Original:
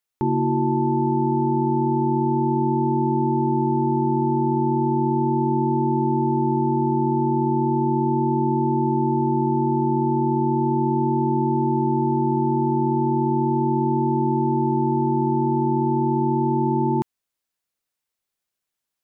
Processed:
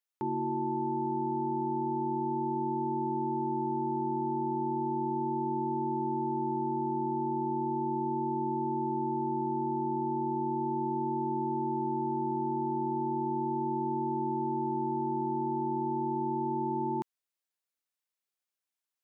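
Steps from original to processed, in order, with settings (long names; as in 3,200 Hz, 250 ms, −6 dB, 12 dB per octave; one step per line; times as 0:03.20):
high-pass filter 380 Hz 6 dB per octave
level −7.5 dB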